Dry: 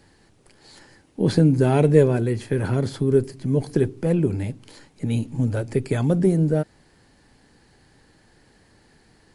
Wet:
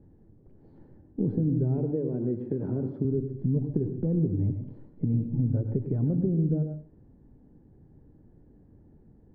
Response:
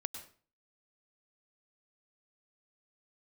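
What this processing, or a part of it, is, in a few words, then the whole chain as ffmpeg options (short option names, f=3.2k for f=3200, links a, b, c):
television next door: -filter_complex "[0:a]asettb=1/sr,asplit=3[a][b][c];[a]atrim=end=1.784[d];[b]atrim=start=1.78:end=3.05,asetpts=PTS-STARTPTS,afade=t=in:d=0.004:c=qsin,afade=t=out:st=1.266:d=0.004:c=qsin,highpass=200[e];[c]atrim=start=3.046[f];[d][e]acrossfade=d=0.004:c1=hsin:c2=qsin[g];[g][f]acrossfade=d=0.004:c1=qsin:c2=hsin,acompressor=threshold=-26dB:ratio=4,lowpass=320[h];[1:a]atrim=start_sample=2205[i];[h][i]afir=irnorm=-1:irlink=0,volume=4.5dB"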